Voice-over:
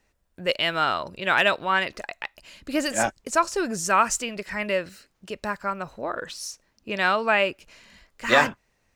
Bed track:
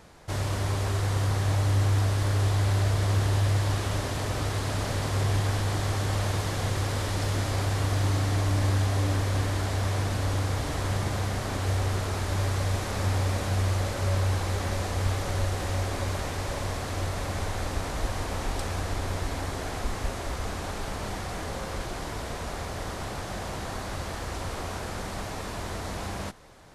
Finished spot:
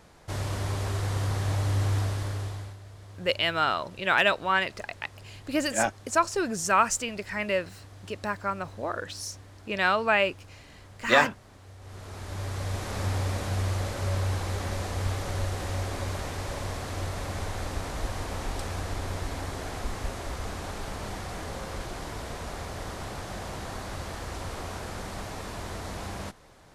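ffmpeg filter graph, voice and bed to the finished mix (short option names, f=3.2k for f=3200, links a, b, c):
-filter_complex "[0:a]adelay=2800,volume=-2dB[a];[1:a]volume=17dB,afade=t=out:st=1.95:d=0.82:silence=0.105925,afade=t=in:st=11.79:d=1.18:silence=0.105925[b];[a][b]amix=inputs=2:normalize=0"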